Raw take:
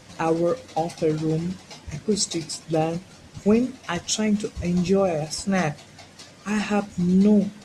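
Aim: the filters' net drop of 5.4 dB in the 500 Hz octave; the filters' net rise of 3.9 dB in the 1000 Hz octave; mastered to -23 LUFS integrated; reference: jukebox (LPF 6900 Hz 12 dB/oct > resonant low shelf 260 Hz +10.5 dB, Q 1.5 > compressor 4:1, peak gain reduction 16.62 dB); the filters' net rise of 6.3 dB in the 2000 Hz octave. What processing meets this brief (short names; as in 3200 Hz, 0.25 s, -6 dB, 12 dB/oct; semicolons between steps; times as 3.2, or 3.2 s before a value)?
LPF 6900 Hz 12 dB/oct; resonant low shelf 260 Hz +10.5 dB, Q 1.5; bell 500 Hz -6.5 dB; bell 1000 Hz +8 dB; bell 2000 Hz +6 dB; compressor 4:1, threshold -24 dBFS; gain +4 dB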